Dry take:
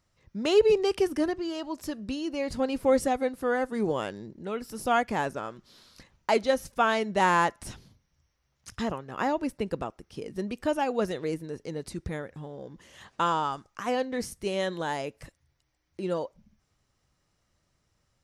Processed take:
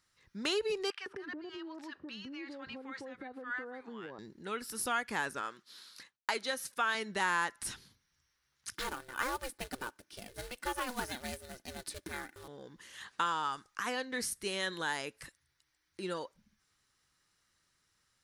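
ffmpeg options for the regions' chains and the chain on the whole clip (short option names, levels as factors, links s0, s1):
-filter_complex "[0:a]asettb=1/sr,asplit=3[s0][s1][s2];[s0]atrim=end=0.904[s3];[s1]atrim=start=0.9:end=4.19,asetpts=PTS-STARTPTS,afade=t=in:d=0.004:c=qsin,afade=t=out:st=3.286:d=0.004:c=qsin,acrossover=split=980[s4][s5];[s4]adelay=160[s6];[s6][s5]amix=inputs=2:normalize=0,atrim=end_sample=145089,acompressor=threshold=0.02:ratio=8:attack=3.2:release=140:knee=1:detection=peak,highpass=110,lowpass=2600[s7];[s2]atrim=start=4.186[s8];[s3][s7]acrossfade=d=0.004:c1=hsin:c2=qsin[s9];[s9][s8]acrossfade=d=0.004:c1=qsin:c2=hsin,asettb=1/sr,asplit=3[s10][s11][s12];[s10]atrim=end=5.414[s13];[s11]atrim=start=5.41:end=6.95,asetpts=PTS-STARTPTS,afade=t=in:d=0.004:c=qsin,afade=t=out:st=1.536:d=0.004:c=qsin,highpass=f=260:p=1,agate=range=0.0224:threshold=0.00126:ratio=3:release=100:detection=peak[s14];[s12]atrim=start=6.946[s15];[s13][s14]acrossfade=d=0.004:c1=hsin:c2=qsin[s16];[s16][s15]acrossfade=d=0.004:c1=qsin:c2=hsin,asettb=1/sr,asplit=3[s17][s18][s19];[s17]atrim=end=8.744[s20];[s18]atrim=start=8.74:end=12.48,asetpts=PTS-STARTPTS,afade=t=in:d=0.004:c=qsin,afade=t=out:st=3.736:d=0.004:c=qsin,acrusher=bits=4:mode=log:mix=0:aa=0.000001,aeval=exprs='val(0)*sin(2*PI*250*n/s)':c=same,aecho=1:1:3.4:0.35,atrim=end_sample=164934[s21];[s19]atrim=start=12.476[s22];[s20][s21]acrossfade=d=0.004:c1=hsin:c2=qsin[s23];[s23][s22]acrossfade=d=0.004:c1=qsin:c2=hsin,lowshelf=f=260:g=-11.5,acompressor=threshold=0.0355:ratio=3,equalizer=f=630:t=o:w=0.67:g=-9,equalizer=f=1600:t=o:w=0.67:g=6,equalizer=f=4000:t=o:w=0.67:g=5,equalizer=f=10000:t=o:w=0.67:g=8,volume=0.841"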